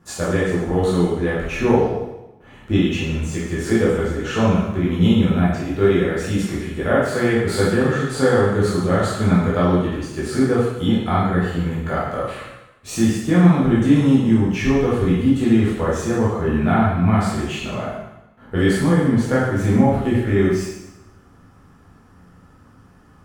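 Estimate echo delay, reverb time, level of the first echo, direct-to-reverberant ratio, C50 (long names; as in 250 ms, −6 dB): no echo audible, 0.95 s, no echo audible, −8.0 dB, 0.0 dB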